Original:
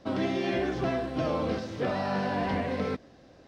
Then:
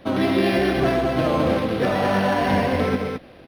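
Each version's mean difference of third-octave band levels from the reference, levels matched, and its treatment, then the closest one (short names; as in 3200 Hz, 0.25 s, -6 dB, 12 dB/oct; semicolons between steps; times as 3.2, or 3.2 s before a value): 4.5 dB: high shelf 2600 Hz +8.5 dB; loudspeakers at several distances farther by 46 m -10 dB, 74 m -5 dB; decimation joined by straight lines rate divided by 6×; gain +7.5 dB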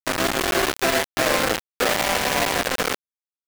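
13.5 dB: HPF 320 Hz 12 dB/oct; overdrive pedal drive 24 dB, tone 1600 Hz, clips at -19 dBFS; bit-crush 4-bit; gain +5 dB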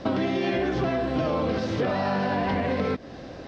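3.0 dB: LPF 5600 Hz 12 dB/oct; in parallel at +2 dB: limiter -25.5 dBFS, peak gain reduction 8.5 dB; on the sum: compressor 4:1, threshold -32 dBFS, peak gain reduction 10 dB; gain +8 dB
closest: third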